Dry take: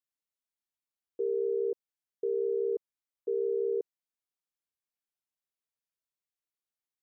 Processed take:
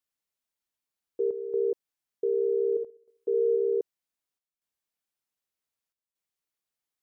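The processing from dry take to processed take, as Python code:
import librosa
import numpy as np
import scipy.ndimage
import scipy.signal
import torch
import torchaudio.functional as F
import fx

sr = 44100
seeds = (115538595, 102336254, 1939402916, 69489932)

y = fx.room_flutter(x, sr, wall_m=11.5, rt60_s=0.55, at=(2.75, 3.55), fade=0.02)
y = fx.chopper(y, sr, hz=0.65, depth_pct=65, duty_pct=85)
y = y * 10.0 ** (4.0 / 20.0)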